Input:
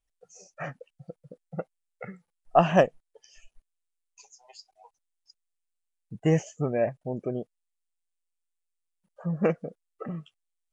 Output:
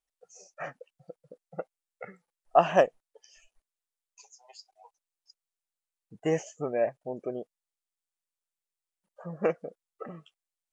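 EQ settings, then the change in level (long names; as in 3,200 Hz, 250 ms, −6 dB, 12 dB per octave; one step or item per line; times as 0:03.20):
bass and treble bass −14 dB, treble +8 dB
high-shelf EQ 3,600 Hz −10.5 dB
0.0 dB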